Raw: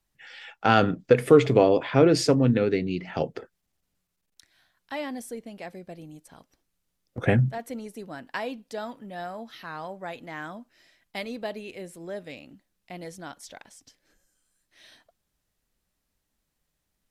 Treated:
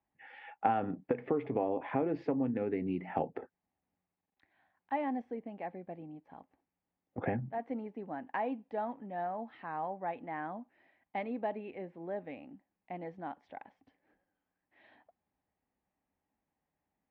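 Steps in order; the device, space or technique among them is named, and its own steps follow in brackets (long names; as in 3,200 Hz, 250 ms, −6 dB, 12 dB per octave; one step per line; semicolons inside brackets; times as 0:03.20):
bass amplifier (downward compressor 6 to 1, threshold −26 dBFS, peak gain reduction 14.5 dB; loudspeaker in its box 84–2,200 Hz, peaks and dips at 130 Hz −6 dB, 270 Hz +5 dB, 810 Hz +10 dB, 1,400 Hz −6 dB)
level −4.5 dB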